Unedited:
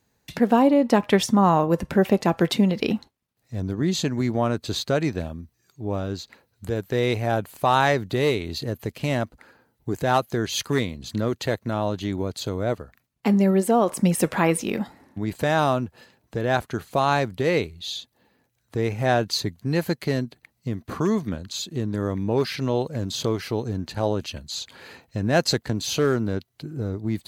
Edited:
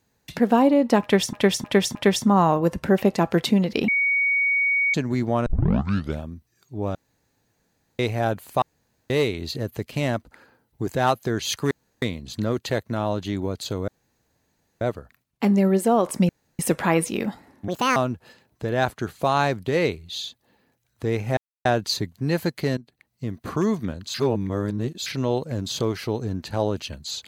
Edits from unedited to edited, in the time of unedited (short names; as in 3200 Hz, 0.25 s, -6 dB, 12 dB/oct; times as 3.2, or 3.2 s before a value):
1.02–1.33 loop, 4 plays
2.95–4.01 bleep 2240 Hz -18 dBFS
4.53 tape start 0.75 s
6.02–7.06 room tone
7.69–8.17 room tone
10.78 insert room tone 0.31 s
12.64 insert room tone 0.93 s
14.12 insert room tone 0.30 s
15.21–15.68 speed 167%
19.09 insert silence 0.28 s
20.21–20.82 fade in, from -15 dB
21.58–22.5 reverse